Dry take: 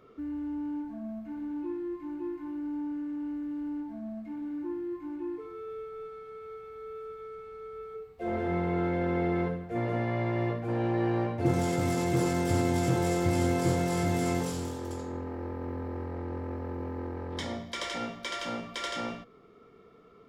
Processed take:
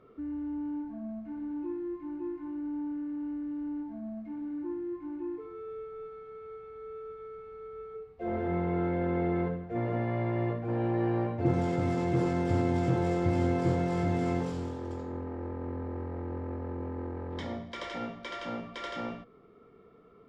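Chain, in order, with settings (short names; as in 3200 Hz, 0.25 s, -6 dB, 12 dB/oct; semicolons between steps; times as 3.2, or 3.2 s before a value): tape spacing loss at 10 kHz 21 dB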